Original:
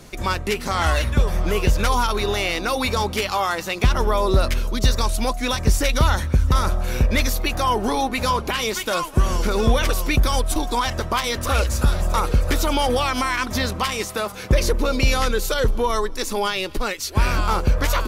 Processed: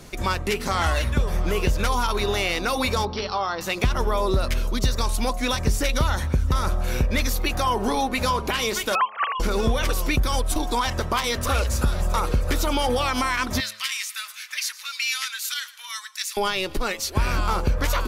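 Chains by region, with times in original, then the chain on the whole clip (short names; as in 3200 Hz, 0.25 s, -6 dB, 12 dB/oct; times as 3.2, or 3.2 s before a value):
3.05–3.61 rippled Chebyshev low-pass 5700 Hz, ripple 3 dB + bell 2100 Hz -9 dB 1.1 oct
8.95–9.4 sine-wave speech + Chebyshev high-pass 1300 Hz
13.6–16.37 inverse Chebyshev high-pass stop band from 380 Hz, stop band 70 dB + echo 0.112 s -18 dB
whole clip: de-hum 107.5 Hz, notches 11; compressor 2.5:1, threshold -19 dBFS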